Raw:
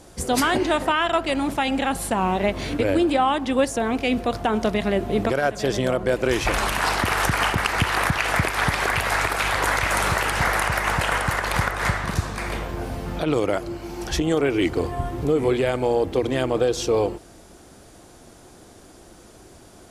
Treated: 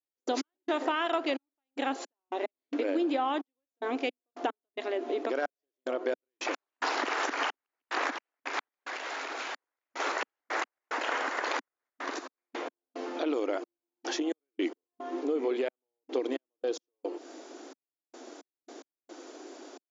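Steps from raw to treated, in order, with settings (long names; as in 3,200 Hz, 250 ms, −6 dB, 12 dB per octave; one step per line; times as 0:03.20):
low-shelf EQ 430 Hz +6 dB
downward compressor 6 to 1, threshold −26 dBFS, peak gain reduction 14.5 dB
gate pattern "..x..xxxxx...xx" 110 BPM −60 dB
0:08.84–0:10.00: tube saturation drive 33 dB, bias 0.35
linear-phase brick-wall band-pass 250–7,300 Hz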